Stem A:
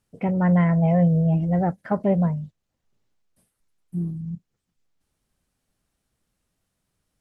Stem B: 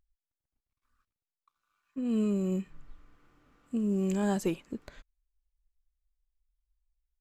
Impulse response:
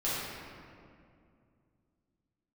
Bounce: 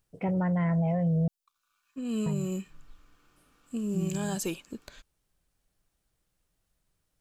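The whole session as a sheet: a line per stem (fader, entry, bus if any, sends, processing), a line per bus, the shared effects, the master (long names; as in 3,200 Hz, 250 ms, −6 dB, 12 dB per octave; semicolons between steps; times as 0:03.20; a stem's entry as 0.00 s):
−3.0 dB, 0.00 s, muted 0:01.28–0:02.26, no send, parametric band 230 Hz −10 dB 0.23 octaves
−2.5 dB, 0.00 s, no send, high-shelf EQ 2,100 Hz +12 dB; notch filter 2,000 Hz, Q 7.3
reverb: not used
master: brickwall limiter −21.5 dBFS, peak gain reduction 7 dB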